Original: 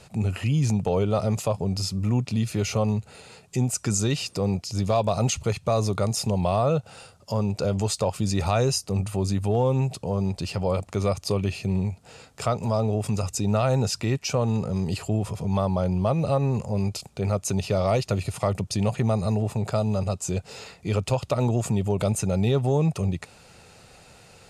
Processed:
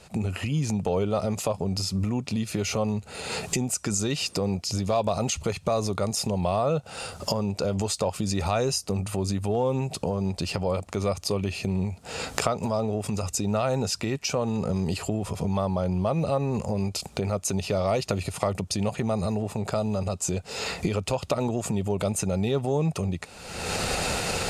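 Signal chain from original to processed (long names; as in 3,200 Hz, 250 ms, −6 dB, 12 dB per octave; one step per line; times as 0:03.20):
camcorder AGC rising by 45 dB per second
parametric band 120 Hz −8 dB 0.46 octaves
level −1.5 dB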